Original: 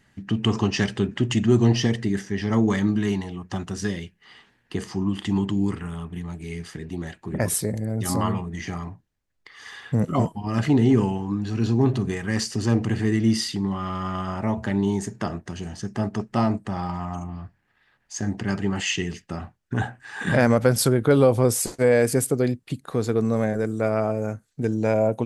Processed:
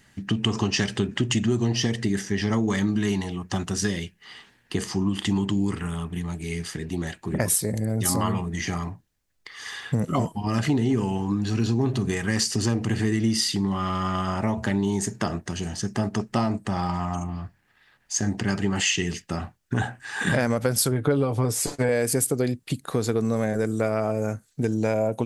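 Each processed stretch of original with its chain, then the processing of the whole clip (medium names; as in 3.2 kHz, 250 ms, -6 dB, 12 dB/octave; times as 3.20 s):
20.91–21.89 s: low-pass 3 kHz 6 dB/octave + comb 6.9 ms, depth 57%
whole clip: treble shelf 3.5 kHz +7.5 dB; compression 5:1, threshold -22 dBFS; trim +2.5 dB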